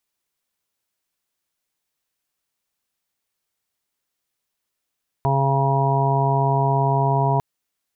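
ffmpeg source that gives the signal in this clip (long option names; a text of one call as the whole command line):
ffmpeg -f lavfi -i "aevalsrc='0.112*sin(2*PI*137*t)+0.0224*sin(2*PI*274*t)+0.0473*sin(2*PI*411*t)+0.0112*sin(2*PI*548*t)+0.0668*sin(2*PI*685*t)+0.0376*sin(2*PI*822*t)+0.0794*sin(2*PI*959*t)':duration=2.15:sample_rate=44100" out.wav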